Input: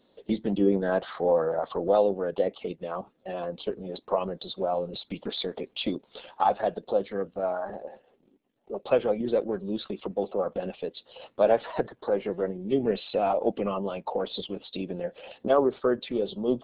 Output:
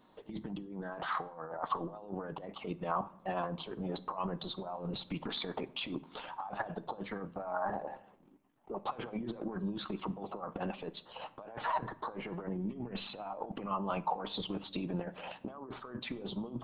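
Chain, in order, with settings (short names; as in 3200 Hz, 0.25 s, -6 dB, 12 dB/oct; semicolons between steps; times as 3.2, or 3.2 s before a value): negative-ratio compressor -34 dBFS, ratio -1; graphic EQ 500/1000/4000 Hz -9/+9/-8 dB; shoebox room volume 2000 m³, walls furnished, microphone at 0.5 m; gain -3.5 dB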